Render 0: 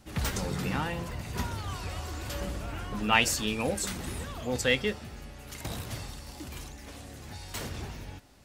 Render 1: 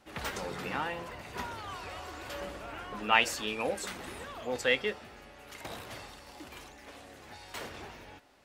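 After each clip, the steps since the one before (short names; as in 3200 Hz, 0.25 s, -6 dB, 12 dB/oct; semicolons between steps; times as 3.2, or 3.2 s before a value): tone controls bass -15 dB, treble -9 dB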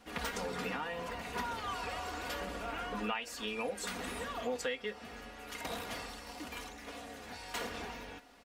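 compressor 12:1, threshold -37 dBFS, peak gain reduction 19.5 dB; comb 4.2 ms, depth 60%; gain +2 dB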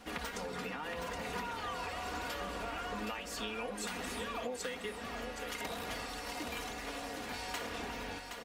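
compressor, threshold -43 dBFS, peak gain reduction 12 dB; on a send: echo 0.77 s -6 dB; on the sum: gain +5.5 dB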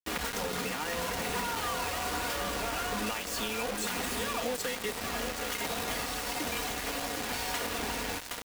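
in parallel at -2 dB: limiter -31.5 dBFS, peak gain reduction 7.5 dB; on the sum: bit-crush 6-bit; gain +1 dB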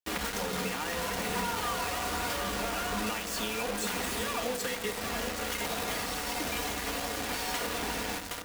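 reverb RT60 2.2 s, pre-delay 5 ms, DRR 9 dB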